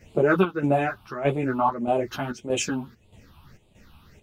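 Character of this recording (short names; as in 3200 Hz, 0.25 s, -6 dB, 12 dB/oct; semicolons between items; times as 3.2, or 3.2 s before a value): phasing stages 6, 1.7 Hz, lowest notch 490–1600 Hz; chopped level 1.6 Hz, depth 65%, duty 70%; a shimmering, thickened sound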